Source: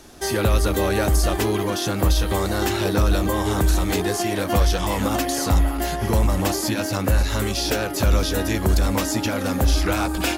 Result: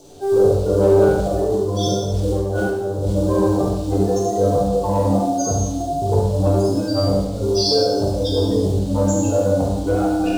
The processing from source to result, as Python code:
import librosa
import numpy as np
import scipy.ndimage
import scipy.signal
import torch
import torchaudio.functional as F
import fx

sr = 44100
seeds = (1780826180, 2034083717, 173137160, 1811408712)

p1 = fx.low_shelf(x, sr, hz=130.0, db=-2.0)
p2 = fx.spec_gate(p1, sr, threshold_db=-10, keep='strong')
p3 = fx.hum_notches(p2, sr, base_hz=60, count=10)
p4 = fx.resonator_bank(p3, sr, root=43, chord='fifth', decay_s=0.29)
p5 = fx.quant_companded(p4, sr, bits=6)
p6 = 10.0 ** (-31.0 / 20.0) * np.tanh(p5 / 10.0 ** (-31.0 / 20.0))
p7 = fx.graphic_eq_10(p6, sr, hz=(125, 500, 1000, 2000, 4000, 8000), db=(8, 12, 5, -10, 11, 10))
p8 = p7 + fx.echo_single(p7, sr, ms=71, db=-6.5, dry=0)
p9 = fx.over_compress(p8, sr, threshold_db=-33.0, ratio=-1.0, at=(1.18, 3.13))
p10 = fx.rev_schroeder(p9, sr, rt60_s=0.9, comb_ms=32, drr_db=-1.5)
y = p10 * librosa.db_to_amplitude(9.0)